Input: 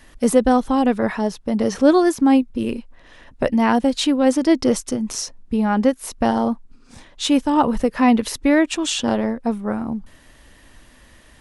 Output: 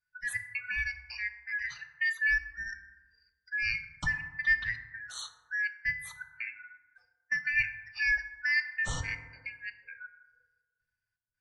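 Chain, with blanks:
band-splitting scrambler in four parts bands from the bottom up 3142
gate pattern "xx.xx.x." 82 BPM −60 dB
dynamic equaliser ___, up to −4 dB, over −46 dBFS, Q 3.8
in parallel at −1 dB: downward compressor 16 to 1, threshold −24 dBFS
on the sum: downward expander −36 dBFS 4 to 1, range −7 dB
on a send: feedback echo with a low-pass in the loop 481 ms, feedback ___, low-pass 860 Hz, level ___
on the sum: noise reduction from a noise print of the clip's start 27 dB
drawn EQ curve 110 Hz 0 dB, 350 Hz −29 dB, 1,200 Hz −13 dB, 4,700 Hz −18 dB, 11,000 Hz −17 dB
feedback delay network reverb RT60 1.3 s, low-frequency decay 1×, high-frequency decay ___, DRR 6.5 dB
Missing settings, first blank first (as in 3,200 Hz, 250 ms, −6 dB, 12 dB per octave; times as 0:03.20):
6,700 Hz, 62%, −20 dB, 0.35×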